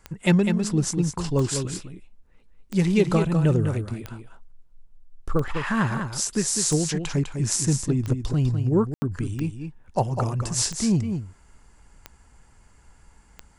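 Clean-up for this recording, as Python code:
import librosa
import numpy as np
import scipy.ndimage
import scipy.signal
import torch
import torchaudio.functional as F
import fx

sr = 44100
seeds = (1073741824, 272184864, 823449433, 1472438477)

y = fx.fix_declick_ar(x, sr, threshold=10.0)
y = fx.fix_ambience(y, sr, seeds[0], print_start_s=13.07, print_end_s=13.57, start_s=8.94, end_s=9.02)
y = fx.fix_echo_inverse(y, sr, delay_ms=202, level_db=-7.0)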